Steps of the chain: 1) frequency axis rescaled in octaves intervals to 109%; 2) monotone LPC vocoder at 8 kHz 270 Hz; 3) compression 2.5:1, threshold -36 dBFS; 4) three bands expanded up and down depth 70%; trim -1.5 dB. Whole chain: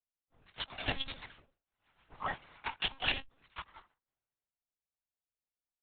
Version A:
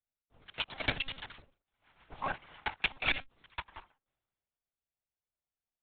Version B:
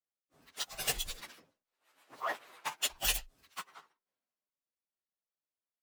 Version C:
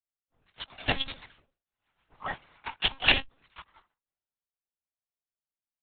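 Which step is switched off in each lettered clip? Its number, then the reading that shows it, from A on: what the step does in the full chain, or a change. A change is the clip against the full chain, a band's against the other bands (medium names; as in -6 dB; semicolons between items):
1, 2 kHz band +2.5 dB; 2, 250 Hz band -8.0 dB; 3, loudness change +9.5 LU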